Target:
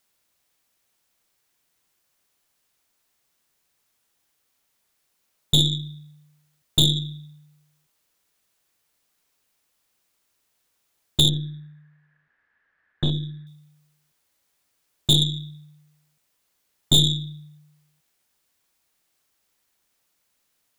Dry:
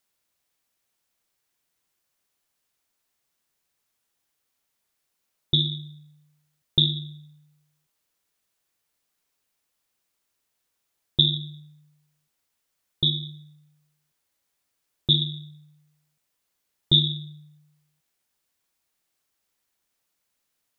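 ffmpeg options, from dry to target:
-filter_complex "[0:a]aeval=exprs='(tanh(11.2*val(0)+0.65)-tanh(0.65))/11.2':c=same,asettb=1/sr,asplit=3[a][b][c];[a]atrim=end=11.294[d];[b]atrim=start=11.29:end=13.47,asetpts=PTS-STARTPTS,afade=t=in:d=0.004:c=qsin,afade=t=out:st=2.176:d=0.004:c=qsin,lowpass=f=1.7k:t=q:w=13[e];[c]atrim=start=13.466[f];[d][e]acrossfade=d=0.004:c1=hsin:c2=qsin[g];[g][f]acrossfade=d=0.004:c1=qsin:c2=hsin,volume=9dB"

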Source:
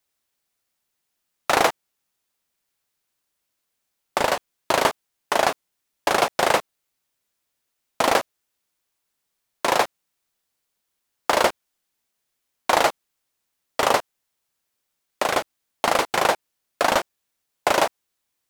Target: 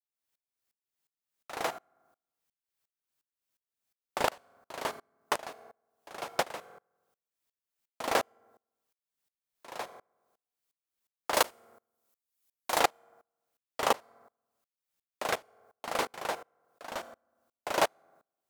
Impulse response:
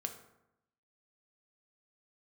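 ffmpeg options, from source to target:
-filter_complex "[0:a]asettb=1/sr,asplit=3[a][b][c];[a]atrim=end=11.344[d];[b]atrim=start=11.34:end=12.8,asetpts=PTS-STARTPTS,afade=t=in:d=0.004:c=qsin,afade=t=out:st=1.456:d=0.004:c=qsin,aemphasis=mode=production:type=cd[e];[c]atrim=start=12.796[f];[d][e]acrossfade=d=0.004:c1=hsin:c2=qsin[g];[g][f]acrossfade=d=0.004:c1=qsin:c2=hsin,asplit=2[h][i];[1:a]atrim=start_sample=2205,highshelf=f=12k:g=11.5[j];[i][j]afir=irnorm=-1:irlink=0,volume=-8.5dB[k];[h][k]amix=inputs=2:normalize=0,aeval=exprs='val(0)*pow(10,-28*if(lt(mod(-2.8*n/s,1),2*abs(-2.8)/1000),1-mod(-2.8*n/s,1)/(2*abs(-2.8)/1000),(mod(-2.8*n/s,1)-2*abs(-2.8)/1000)/(1-2*abs(-2.8)/1000))/20)':c=same,volume=-5.5dB"

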